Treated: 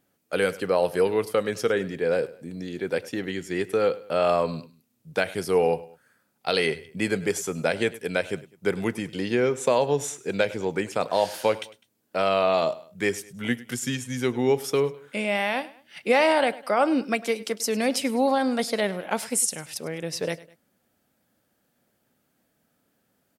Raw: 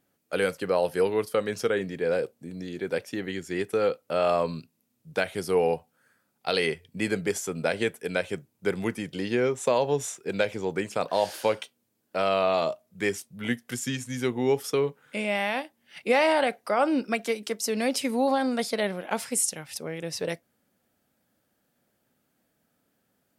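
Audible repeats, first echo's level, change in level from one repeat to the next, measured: 2, -19.0 dB, -7.5 dB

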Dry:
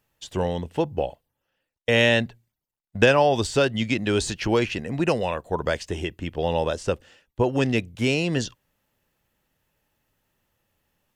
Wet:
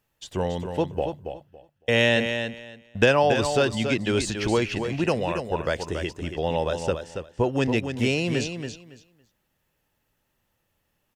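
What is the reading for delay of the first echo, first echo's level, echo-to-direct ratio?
279 ms, -7.5 dB, -7.5 dB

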